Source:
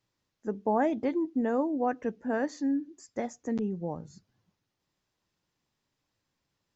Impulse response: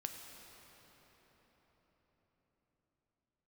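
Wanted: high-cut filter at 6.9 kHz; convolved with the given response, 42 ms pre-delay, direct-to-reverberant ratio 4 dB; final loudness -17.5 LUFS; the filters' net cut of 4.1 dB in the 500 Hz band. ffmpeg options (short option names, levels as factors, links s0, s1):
-filter_complex "[0:a]lowpass=6900,equalizer=f=500:t=o:g=-5,asplit=2[s0][s1];[1:a]atrim=start_sample=2205,adelay=42[s2];[s1][s2]afir=irnorm=-1:irlink=0,volume=0.75[s3];[s0][s3]amix=inputs=2:normalize=0,volume=5.31"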